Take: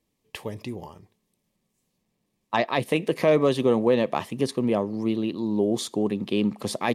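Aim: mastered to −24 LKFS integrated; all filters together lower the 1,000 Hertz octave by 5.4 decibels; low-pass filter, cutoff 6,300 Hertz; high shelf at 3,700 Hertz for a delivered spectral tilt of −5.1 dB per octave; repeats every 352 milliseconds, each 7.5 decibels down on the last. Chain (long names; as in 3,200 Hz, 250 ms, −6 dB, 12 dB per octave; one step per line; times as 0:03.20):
low-pass filter 6,300 Hz
parametric band 1,000 Hz −7.5 dB
high-shelf EQ 3,700 Hz +3.5 dB
repeating echo 352 ms, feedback 42%, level −7.5 dB
level +1 dB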